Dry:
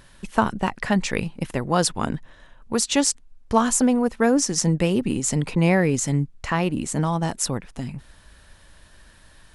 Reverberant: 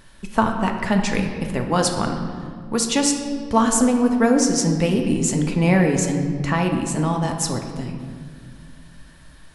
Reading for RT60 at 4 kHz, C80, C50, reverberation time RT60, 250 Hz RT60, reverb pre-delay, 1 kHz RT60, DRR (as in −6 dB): 1.2 s, 7.0 dB, 5.5 dB, 1.9 s, 2.9 s, 3 ms, 1.7 s, 3.0 dB